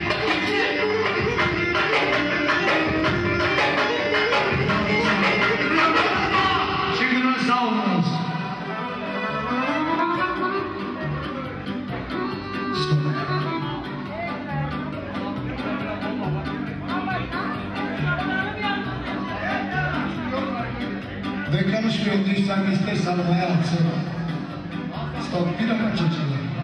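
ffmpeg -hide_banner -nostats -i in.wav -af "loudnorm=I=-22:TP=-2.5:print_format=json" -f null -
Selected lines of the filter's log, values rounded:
"input_i" : "-23.1",
"input_tp" : "-6.7",
"input_lra" : "6.6",
"input_thresh" : "-33.1",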